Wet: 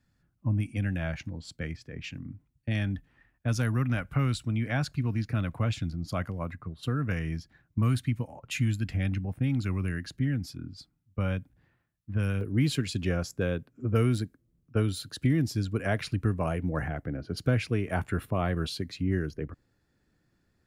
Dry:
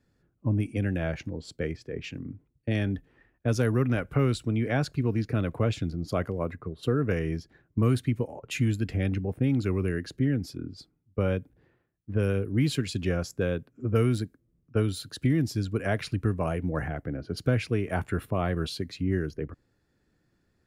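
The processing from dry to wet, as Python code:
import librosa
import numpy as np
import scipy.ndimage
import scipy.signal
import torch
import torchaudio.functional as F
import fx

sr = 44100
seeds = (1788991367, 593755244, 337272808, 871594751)

y = fx.peak_eq(x, sr, hz=420.0, db=fx.steps((0.0, -13.5), (12.41, -3.0)), octaves=0.89)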